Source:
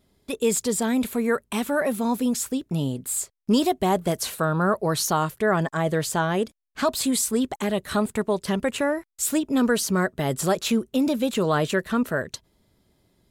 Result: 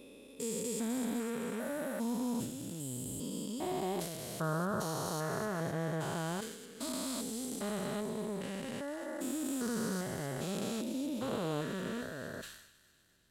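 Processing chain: stepped spectrum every 0.4 s; on a send: thin delay 0.251 s, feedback 60%, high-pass 3300 Hz, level -6 dB; on the sum: sustainer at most 66 dB/s; gain -8.5 dB

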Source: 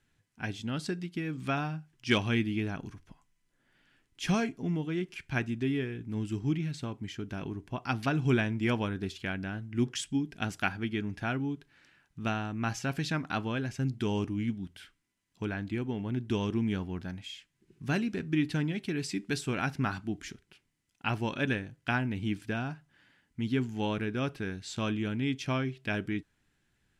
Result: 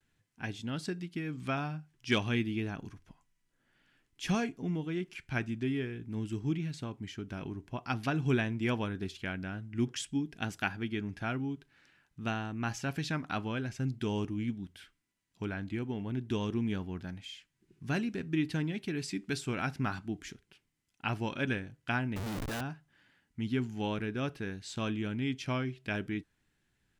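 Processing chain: vibrato 0.5 Hz 37 cents; 22.16–22.61 Schmitt trigger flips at -47.5 dBFS; gain -2.5 dB

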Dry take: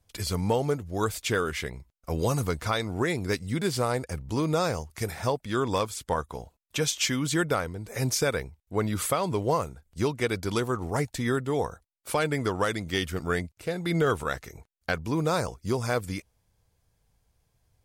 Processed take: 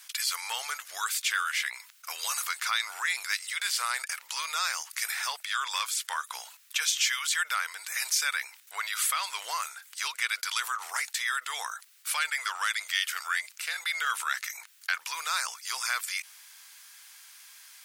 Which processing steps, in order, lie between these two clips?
inverse Chebyshev high-pass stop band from 230 Hz, stop band 80 dB; fast leveller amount 50%

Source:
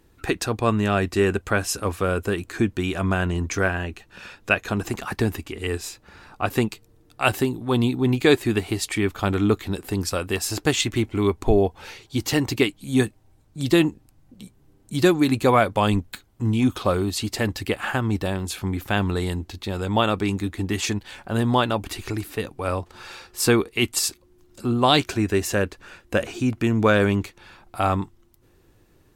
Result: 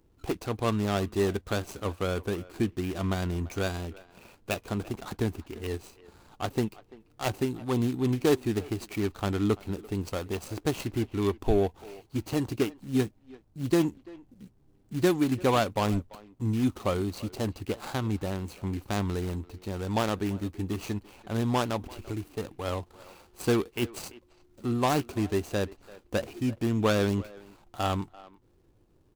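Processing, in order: median filter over 25 samples; high shelf 3300 Hz +9.5 dB; speakerphone echo 0.34 s, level -19 dB; gain -6 dB

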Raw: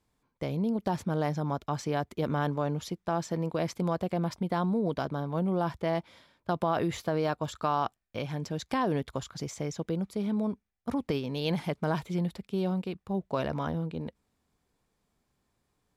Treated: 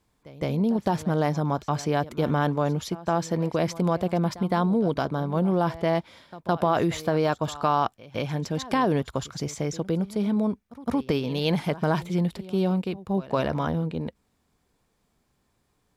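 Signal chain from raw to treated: pre-echo 0.163 s -18 dB; gain +5.5 dB

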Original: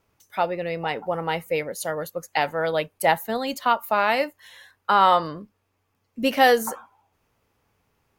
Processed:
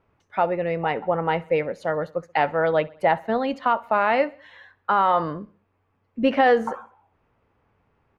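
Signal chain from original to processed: LPF 2000 Hz 12 dB/oct; limiter -13 dBFS, peak gain reduction 7.5 dB; feedback echo 65 ms, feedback 51%, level -23 dB; gain +3.5 dB

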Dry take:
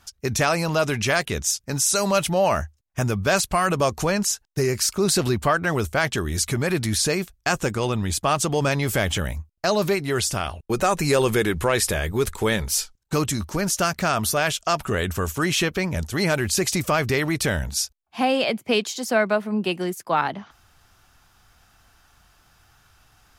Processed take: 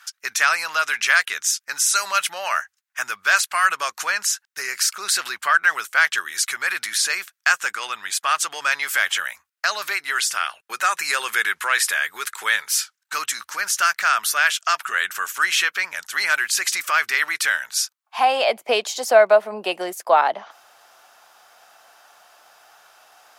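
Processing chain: in parallel at -0.5 dB: compressor, threshold -33 dBFS, peak gain reduction 16.5 dB; on the sum: high-pass sweep 1500 Hz -> 620 Hz, 17.73–18.57

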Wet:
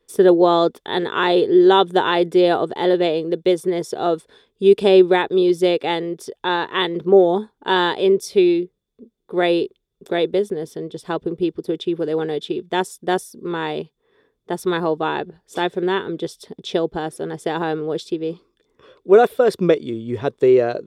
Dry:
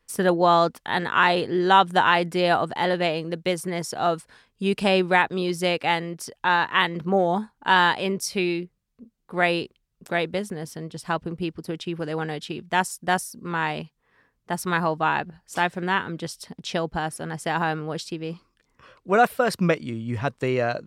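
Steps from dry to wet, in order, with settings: small resonant body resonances 400/3500 Hz, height 18 dB, ringing for 25 ms; gain -3.5 dB

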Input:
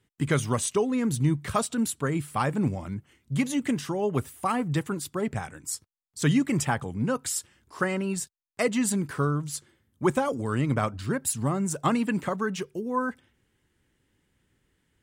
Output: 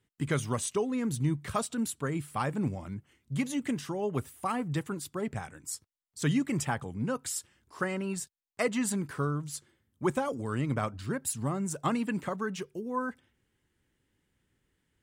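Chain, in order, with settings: 7.99–9.1 dynamic EQ 1200 Hz, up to +4 dB, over -40 dBFS, Q 0.8; gain -5 dB

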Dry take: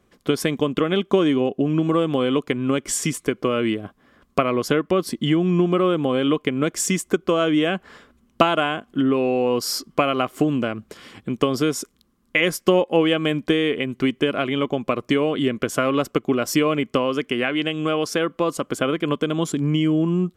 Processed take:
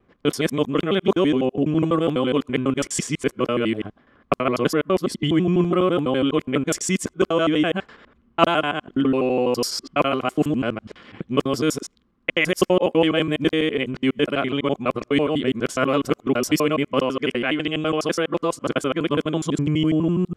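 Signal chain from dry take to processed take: local time reversal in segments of 83 ms; low-pass opened by the level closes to 2400 Hz, open at -16.5 dBFS

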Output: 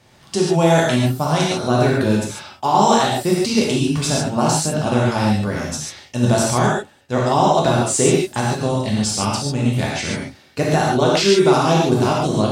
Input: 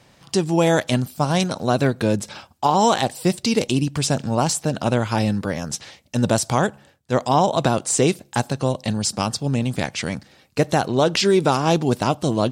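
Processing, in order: non-linear reverb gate 0.17 s flat, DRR -4.5 dB; gain -2.5 dB

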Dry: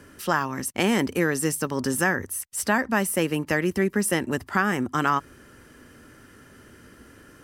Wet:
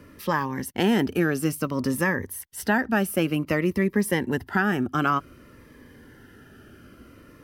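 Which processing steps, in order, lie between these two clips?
bell 7800 Hz -12.5 dB 1.1 oct; cascading phaser falling 0.55 Hz; gain +2 dB

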